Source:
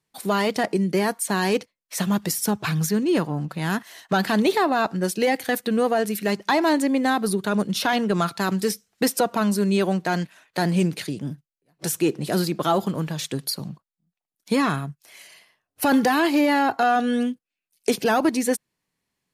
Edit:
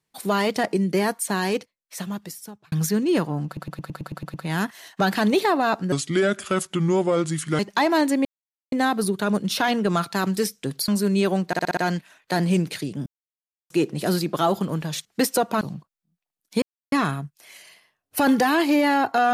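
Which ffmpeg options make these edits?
-filter_complex "[0:a]asplit=25[s0][s1][s2][s3][s4][s5][s6][s7][s8][s9][s10][s11][s12][s13][s14][s15][s16][s17][s18][s19][s20][s21][s22][s23][s24];[s0]atrim=end=2.72,asetpts=PTS-STARTPTS,afade=t=out:st=1.14:d=1.58[s25];[s1]atrim=start=2.72:end=3.572,asetpts=PTS-STARTPTS,afade=t=in:d=0.004:c=hsin[s26];[s2]atrim=start=3.458:end=3.572[s27];[s3]atrim=start=3.458:end=3.572[s28];[s4]atrim=start=3.458:end=3.572[s29];[s5]atrim=start=3.458:end=3.572[s30];[s6]atrim=start=3.458:end=3.572[s31];[s7]atrim=start=3.458:end=3.572[s32];[s8]atrim=start=3.458:end=3.572[s33];[s9]atrim=start=3.458:end=5.044[s34];[s10]atrim=start=5.04:end=6.31,asetpts=PTS-STARTPTS,asetrate=33516,aresample=44100,atrim=end_sample=73693,asetpts=PTS-STARTPTS[s35];[s11]atrim=start=6.306:end=6.97,asetpts=PTS-STARTPTS,afade=t=out:st=0.66:d=0.004:c=hsin,apad=pad_dur=0.47[s36];[s12]atrim=start=6.97:end=8.882,asetpts=PTS-STARTPTS,afade=t=in:d=0.004:c=hsin[s37];[s13]atrim=start=13.308:end=13.562[s38];[s14]atrim=start=9.438:end=10.092[s39];[s15]atrim=start=10.028:end=10.092[s40];[s16]atrim=start=10.028:end=10.092[s41];[s17]atrim=start=10.028:end=10.092[s42];[s18]atrim=start=10.028:end=10.092[s43];[s19]atrim=start=10.028:end=11.32,asetpts=PTS-STARTPTS,afade=t=out:st=1.288:d=0.004:c=hsin[s44];[s20]atrim=start=11.32:end=11.96,asetpts=PTS-STARTPTS,volume=0[s45];[s21]atrim=start=11.96:end=13.312,asetpts=PTS-STARTPTS,afade=t=in:d=0.004:c=hsin[s46];[s22]atrim=start=8.878:end=9.442[s47];[s23]atrim=start=13.558:end=14.57,asetpts=PTS-STARTPTS,afade=t=out:st=1.008:d=0.004:c=hsin,apad=pad_dur=0.3[s48];[s24]atrim=start=14.57,asetpts=PTS-STARTPTS,afade=t=in:d=0.004:c=hsin[s49];[s25][s26]concat=n=2:v=0:a=1[s50];[s50][s27]acrossfade=d=0.004:c1=hsin:c2=hsin[s51];[s51][s28]acrossfade=d=0.004:c1=hsin:c2=hsin[s52];[s52][s29]acrossfade=d=0.004:c1=hsin:c2=hsin[s53];[s53][s30]acrossfade=d=0.004:c1=hsin:c2=hsin[s54];[s54][s31]acrossfade=d=0.004:c1=hsin:c2=hsin[s55];[s55][s32]acrossfade=d=0.004:c1=hsin:c2=hsin[s56];[s56][s33]acrossfade=d=0.004:c1=hsin:c2=hsin[s57];[s57][s34]acrossfade=d=0.004:c1=hsin:c2=hsin[s58];[s58][s35]acrossfade=d=0.004:c1=hsin:c2=hsin[s59];[s36][s37]concat=n=2:v=0:a=1[s60];[s59][s60]acrossfade=d=0.004:c1=hsin:c2=hsin[s61];[s61][s38]acrossfade=d=0.004:c1=hsin:c2=hsin[s62];[s62][s39]acrossfade=d=0.004:c1=hsin:c2=hsin[s63];[s63][s40]acrossfade=d=0.004:c1=hsin:c2=hsin[s64];[s64][s41]acrossfade=d=0.004:c1=hsin:c2=hsin[s65];[s65][s42]acrossfade=d=0.004:c1=hsin:c2=hsin[s66];[s66][s43]acrossfade=d=0.004:c1=hsin:c2=hsin[s67];[s44][s45][s46]concat=n=3:v=0:a=1[s68];[s67][s68]acrossfade=d=0.004:c1=hsin:c2=hsin[s69];[s69][s47]acrossfade=d=0.004:c1=hsin:c2=hsin[s70];[s48][s49]concat=n=2:v=0:a=1[s71];[s70][s71]acrossfade=d=0.004:c1=hsin:c2=hsin"

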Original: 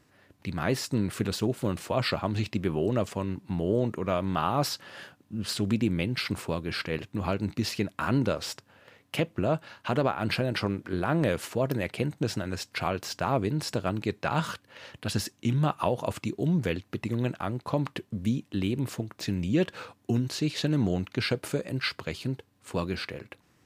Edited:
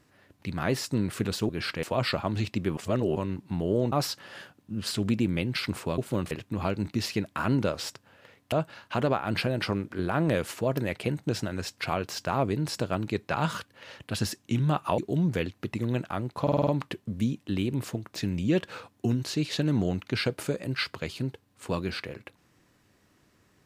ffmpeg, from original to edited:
-filter_complex "[0:a]asplit=15[s0][s1][s2][s3][s4][s5][s6][s7][s8][s9][s10][s11][s12][s13][s14];[s0]atrim=end=1.492[s15];[s1]atrim=start=6.598:end=6.942[s16];[s2]atrim=start=1.818:end=2.762[s17];[s3]atrim=start=2.758:end=3.152,asetpts=PTS-STARTPTS,areverse[s18];[s4]atrim=start=3.148:end=3.912[s19];[s5]atrim=start=4.538:end=6.602[s20];[s6]atrim=start=1.488:end=1.822[s21];[s7]atrim=start=6.938:end=9.152[s22];[s8]atrim=start=9.458:end=15.922[s23];[s9]atrim=start=16.278:end=17.772[s24];[s10]atrim=start=17.718:end=17.772[s25];[s11]atrim=start=17.718:end=17.772[s26];[s12]atrim=start=17.718:end=17.772[s27];[s13]atrim=start=17.718:end=17.772[s28];[s14]atrim=start=17.718[s29];[s15][s16]acrossfade=d=0.004:c1=hsin:c2=hsin[s30];[s30][s17]acrossfade=d=0.004:c1=hsin:c2=hsin[s31];[s31][s18]acrossfade=d=0.004:c1=hsin:c2=hsin[s32];[s32][s19]acrossfade=d=0.004:c1=hsin:c2=hsin[s33];[s33][s20]acrossfade=d=0.004:c1=hsin:c2=hsin[s34];[s34][s21]acrossfade=d=0.004:c1=hsin:c2=hsin[s35];[s35][s22]acrossfade=d=0.004:c1=hsin:c2=hsin[s36];[s36][s23]acrossfade=d=0.004:c1=hsin:c2=hsin[s37];[s37][s24]acrossfade=d=0.004:c1=hsin:c2=hsin[s38];[s38][s25]acrossfade=d=0.004:c1=hsin:c2=hsin[s39];[s39][s26]acrossfade=d=0.004:c1=hsin:c2=hsin[s40];[s40][s27]acrossfade=d=0.004:c1=hsin:c2=hsin[s41];[s41][s28]acrossfade=d=0.004:c1=hsin:c2=hsin[s42];[s42][s29]acrossfade=d=0.004:c1=hsin:c2=hsin"

